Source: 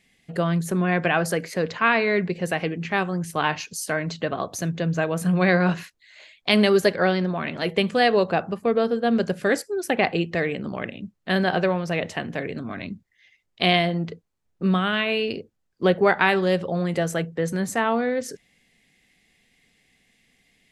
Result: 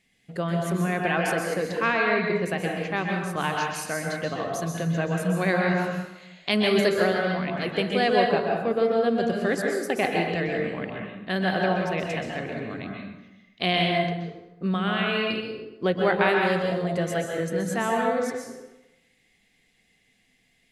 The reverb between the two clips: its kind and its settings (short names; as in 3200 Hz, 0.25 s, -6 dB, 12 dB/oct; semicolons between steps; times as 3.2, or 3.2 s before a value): plate-style reverb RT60 1 s, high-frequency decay 0.7×, pre-delay 0.115 s, DRR 0 dB; gain -5 dB